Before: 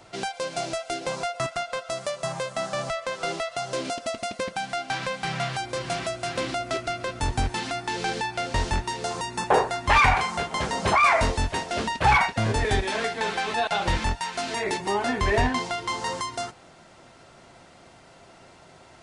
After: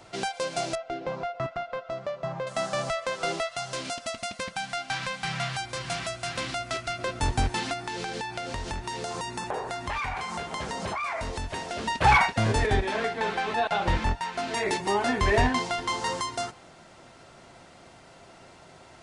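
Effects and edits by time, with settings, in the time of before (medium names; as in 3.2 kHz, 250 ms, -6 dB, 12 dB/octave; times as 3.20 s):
0.75–2.47 s: tape spacing loss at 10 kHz 34 dB
3.47–6.99 s: peaking EQ 400 Hz -9.5 dB 1.6 oct
7.73–11.88 s: compression, threshold -29 dBFS
12.66–14.54 s: treble shelf 3.7 kHz -10.5 dB
15.45–16.00 s: echo throw 330 ms, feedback 15%, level -18 dB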